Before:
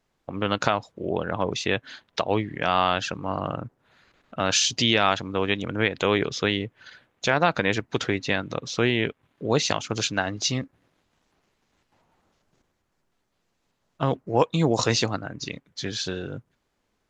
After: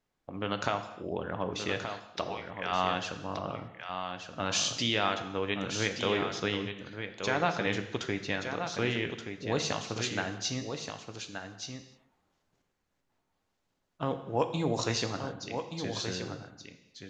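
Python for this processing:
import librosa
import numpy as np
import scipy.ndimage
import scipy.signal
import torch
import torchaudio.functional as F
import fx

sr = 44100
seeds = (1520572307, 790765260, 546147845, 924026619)

y = fx.highpass(x, sr, hz=970.0, slope=12, at=(2.29, 2.72))
y = y + 10.0 ** (-7.5 / 20.0) * np.pad(y, (int(1176 * sr / 1000.0), 0))[:len(y)]
y = fx.rev_gated(y, sr, seeds[0], gate_ms=330, shape='falling', drr_db=7.0)
y = F.gain(torch.from_numpy(y), -8.5).numpy()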